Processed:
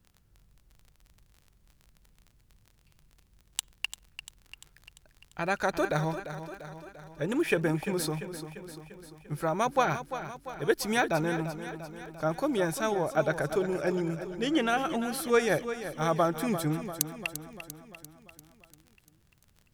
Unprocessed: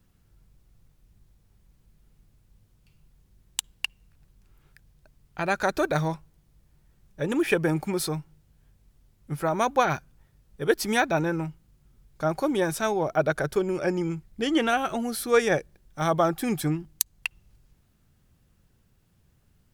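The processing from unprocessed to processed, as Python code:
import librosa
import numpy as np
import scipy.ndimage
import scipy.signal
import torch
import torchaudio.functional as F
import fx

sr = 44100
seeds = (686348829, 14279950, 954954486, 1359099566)

p1 = fx.dmg_crackle(x, sr, seeds[0], per_s=26.0, level_db=-38.0)
p2 = p1 + fx.echo_feedback(p1, sr, ms=345, feedback_pct=58, wet_db=-11.0, dry=0)
y = F.gain(torch.from_numpy(p2), -3.5).numpy()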